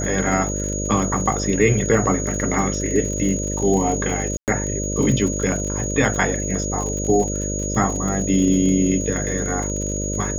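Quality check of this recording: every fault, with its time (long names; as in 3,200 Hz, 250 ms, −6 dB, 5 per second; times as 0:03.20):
mains buzz 50 Hz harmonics 12 −26 dBFS
surface crackle 56 per second −27 dBFS
whistle 6,700 Hz −27 dBFS
0:04.37–0:04.48: drop-out 108 ms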